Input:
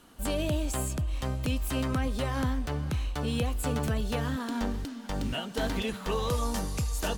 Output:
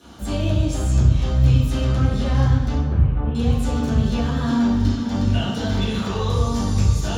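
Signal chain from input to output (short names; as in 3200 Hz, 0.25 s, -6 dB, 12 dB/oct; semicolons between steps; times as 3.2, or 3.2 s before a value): limiter -29.5 dBFS, peak gain reduction 10.5 dB; 2.77–3.35 Gaussian blur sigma 4.5 samples; reverb RT60 1.1 s, pre-delay 3 ms, DRR -12.5 dB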